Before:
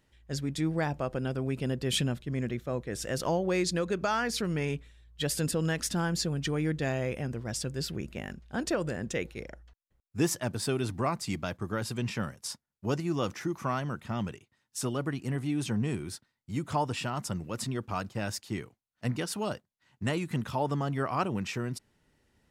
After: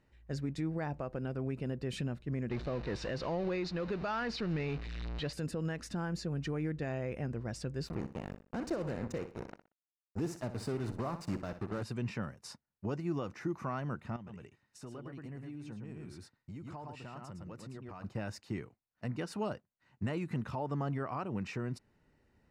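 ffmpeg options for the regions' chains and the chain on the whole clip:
-filter_complex "[0:a]asettb=1/sr,asplit=3[s0][s1][s2];[s0]atrim=end=2.514[s3];[s1]atrim=start=2.51:end=5.33,asetpts=PTS-STARTPTS,afade=t=in:d=0.004:c=qsin,afade=t=out:st=2.816:d=0.004:c=qsin,aeval=exprs='val(0)+0.5*0.0224*sgn(val(0))':c=same,lowpass=f=4100:t=q:w=2[s4];[s2]atrim=start=5.326[s5];[s3][s4]acrossfade=d=0.004:c1=hsin:c2=qsin[s6];[s6][s5]acrossfade=d=0.004:c1=qsin:c2=hsin,asettb=1/sr,asplit=3[s7][s8][s9];[s7]atrim=end=7.874[s10];[s8]atrim=start=7.87:end=11.83,asetpts=PTS-STARTPTS,afade=t=in:d=0.004:c=qsin,afade=t=out:st=3.956:d=0.004:c=qsin,equalizer=f=2300:w=1.5:g=-11,acrusher=bits=5:mix=0:aa=0.5,aecho=1:1:61|122|183:0.251|0.0678|0.0183,atrim=end_sample=174636[s11];[s9]atrim=start=11.826[s12];[s10][s11]acrossfade=d=0.004:c1=hsin:c2=qsin[s13];[s13][s12]acrossfade=d=0.004:c1=qsin:c2=hsin,asettb=1/sr,asplit=3[s14][s15][s16];[s14]atrim=end=14.164[s17];[s15]atrim=start=14.16:end=18.04,asetpts=PTS-STARTPTS,afade=t=in:d=0.004:c=qsin,afade=t=out:st=3.876:d=0.004:c=qsin,aecho=1:1:109:0.562,atrim=end_sample=171108,acompressor=threshold=0.00794:ratio=8:attack=3.2:release=140:knee=1:detection=peak[s18];[s16]atrim=start=18.036[s19];[s17][s18]acrossfade=d=0.004:c1=hsin:c2=qsin[s20];[s20][s19]acrossfade=d=0.004:c1=qsin:c2=hsin,bandreject=f=3300:w=6.8,alimiter=level_in=1.26:limit=0.0631:level=0:latency=1:release=325,volume=0.794,aemphasis=mode=reproduction:type=75kf"

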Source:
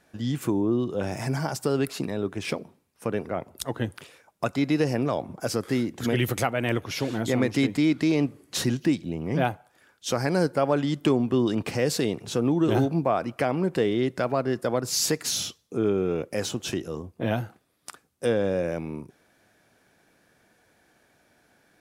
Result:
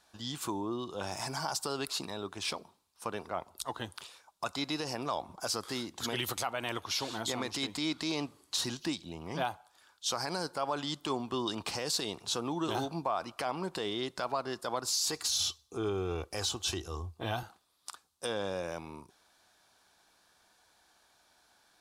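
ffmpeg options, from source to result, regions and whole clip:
-filter_complex "[0:a]asettb=1/sr,asplit=3[s0][s1][s2];[s0]atrim=end=15.084[s3];[s1]atrim=start=15.08:end=17.43,asetpts=PTS-STARTPTS,afade=t=in:d=0.004:c=qsin,afade=t=out:st=2.346:d=0.004:c=qsin,equalizer=f=79:w=1.5:g=14.5,aecho=1:1:2.6:0.32,atrim=end_sample=103635[s4];[s2]atrim=start=17.426[s5];[s3][s4]acrossfade=d=0.004:c1=hsin:c2=qsin[s6];[s6][s5]acrossfade=d=0.004:c1=qsin:c2=hsin,equalizer=f=125:t=o:w=1:g=-11,equalizer=f=250:t=o:w=1:g=-7,equalizer=f=500:t=o:w=1:g=-7,equalizer=f=1000:t=o:w=1:g=8,equalizer=f=2000:t=o:w=1:g=-7,equalizer=f=4000:t=o:w=1:g=9,equalizer=f=8000:t=o:w=1:g=4,alimiter=limit=0.133:level=0:latency=1:release=51,volume=0.631"

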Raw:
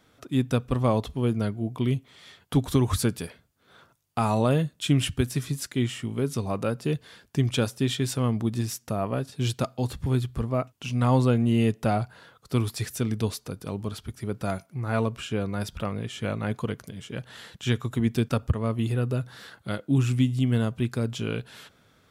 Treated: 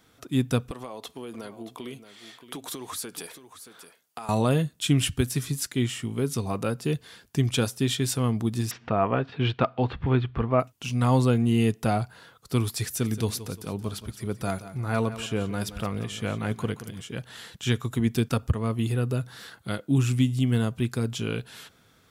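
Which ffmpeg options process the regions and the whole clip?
-filter_complex "[0:a]asettb=1/sr,asplit=3[s0][s1][s2];[s0]atrim=end=0.714[s3];[s1]atrim=start=0.71:end=4.29,asetpts=PTS-STARTPTS,afade=t=in:d=0.004:c=qsin,afade=t=out:st=3.576:d=0.004:c=qsin,highpass=360,acompressor=threshold=0.0224:ratio=10:attack=3.2:release=140:knee=1:detection=peak,aecho=1:1:626:0.251,atrim=end_sample=157878[s4];[s2]atrim=start=4.286[s5];[s3][s4]acrossfade=d=0.004:c1=hsin:c2=qsin[s6];[s6][s5]acrossfade=d=0.004:c1=qsin:c2=hsin,asettb=1/sr,asplit=3[s7][s8][s9];[s7]atrim=end=8.714[s10];[s8]atrim=start=8.71:end=10.6,asetpts=PTS-STARTPTS,afade=t=in:d=0.004:c=qsin,afade=t=out:st=1.886:d=0.004:c=qsin,lowpass=f=3100:w=0.5412,lowpass=f=3100:w=1.3066,equalizer=f=1200:w=0.33:g=7.5,acompressor=mode=upward:threshold=0.0178:ratio=2.5:attack=3.2:release=140:knee=2.83:detection=peak[s11];[s9]atrim=start=10.596[s12];[s10][s11]acrossfade=d=0.004:c1=hsin:c2=qsin[s13];[s13][s12]acrossfade=d=0.004:c1=qsin:c2=hsin,asettb=1/sr,asplit=3[s14][s15][s16];[s14]atrim=end=12.834[s17];[s15]atrim=start=12.83:end=17.02,asetpts=PTS-STARTPTS,afade=t=in:d=0.004:c=qsin,afade=t=out:st=4.186:d=0.004:c=qsin,asoftclip=type=hard:threshold=0.224,aecho=1:1:175|350|525|700:0.2|0.0758|0.0288|0.0109,atrim=end_sample=184779[s18];[s16]atrim=start=17.016[s19];[s17][s18]acrossfade=d=0.004:c1=hsin:c2=qsin[s20];[s20][s19]acrossfade=d=0.004:c1=qsin:c2=hsin,highshelf=f=5200:g=6,bandreject=f=580:w=12"

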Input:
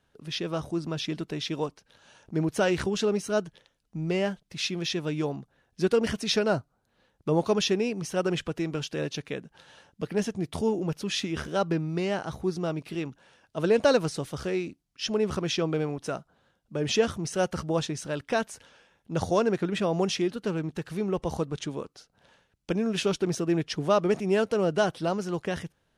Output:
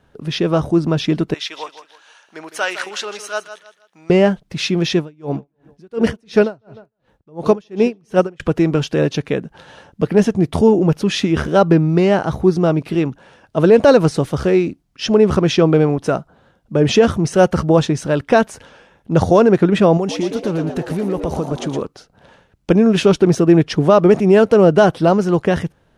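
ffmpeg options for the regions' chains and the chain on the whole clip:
-filter_complex "[0:a]asettb=1/sr,asplit=3[s0][s1][s2];[s0]atrim=end=1.344[s3];[s1]atrim=start=1.34:end=4.1,asetpts=PTS-STARTPTS,afade=t=in:d=0.004:c=qsin,afade=t=out:st=2.756:d=0.004:c=qsin,highpass=1300,aecho=1:1:158|316|474:0.251|0.0804|0.0257,atrim=end_sample=121716[s4];[s2]atrim=start=4.096[s5];[s3][s4]acrossfade=d=0.004:c1=hsin:c2=qsin[s6];[s6][s5]acrossfade=d=0.004:c1=qsin:c2=hsin,asettb=1/sr,asplit=3[s7][s8][s9];[s7]atrim=end=4.984[s10];[s8]atrim=start=4.98:end=8.4,asetpts=PTS-STARTPTS,afade=t=in:d=0.004:c=qsin,afade=t=out:st=3.416:d=0.004:c=qsin,asplit=2[s11][s12];[s12]adelay=152,lowpass=f=4300:p=1,volume=0.112,asplit=2[s13][s14];[s14]adelay=152,lowpass=f=4300:p=1,volume=0.39,asplit=2[s15][s16];[s16]adelay=152,lowpass=f=4300:p=1,volume=0.39[s17];[s11][s13][s15][s17]amix=inputs=4:normalize=0,atrim=end_sample=150822,aeval=exprs='val(0)*pow(10,-36*(0.5-0.5*cos(2*PI*2.8*n/s))/20)':c=same[s18];[s9]atrim=start=8.396[s19];[s10][s18]acrossfade=d=0.004:c1=hsin:c2=qsin[s20];[s20][s19]acrossfade=d=0.004:c1=qsin:c2=hsin,asettb=1/sr,asplit=3[s21][s22][s23];[s21]atrim=end=19.974[s24];[s22]atrim=start=19.97:end=21.82,asetpts=PTS-STARTPTS,afade=t=in:d=0.004:c=qsin,afade=t=out:st=1.846:d=0.004:c=qsin,highshelf=f=6100:g=6,acompressor=threshold=0.02:ratio=3:attack=3.2:release=140:knee=1:detection=peak,asplit=8[s25][s26][s27][s28][s29][s30][s31][s32];[s26]adelay=116,afreqshift=100,volume=0.422[s33];[s27]adelay=232,afreqshift=200,volume=0.24[s34];[s28]adelay=348,afreqshift=300,volume=0.136[s35];[s29]adelay=464,afreqshift=400,volume=0.0785[s36];[s30]adelay=580,afreqshift=500,volume=0.0447[s37];[s31]adelay=696,afreqshift=600,volume=0.0254[s38];[s32]adelay=812,afreqshift=700,volume=0.0145[s39];[s25][s33][s34][s35][s36][s37][s38][s39]amix=inputs=8:normalize=0,atrim=end_sample=81585[s40];[s23]atrim=start=21.816[s41];[s24][s40]acrossfade=d=0.004:c1=hsin:c2=qsin[s42];[s42][s41]acrossfade=d=0.004:c1=qsin:c2=hsin,highshelf=f=2000:g=-10,alimiter=level_in=6.68:limit=0.891:release=50:level=0:latency=1,volume=0.891"

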